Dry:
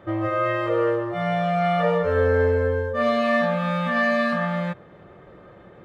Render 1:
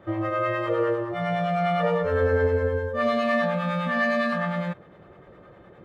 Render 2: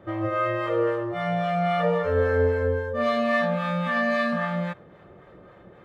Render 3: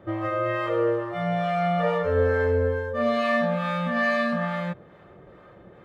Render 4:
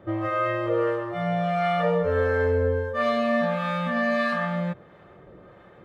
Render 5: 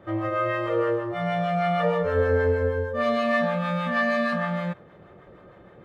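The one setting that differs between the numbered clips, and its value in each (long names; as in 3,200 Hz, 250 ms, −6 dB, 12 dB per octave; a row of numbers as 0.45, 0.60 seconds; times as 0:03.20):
two-band tremolo in antiphase, speed: 9.8, 3.7, 2.3, 1.5, 6.4 Hertz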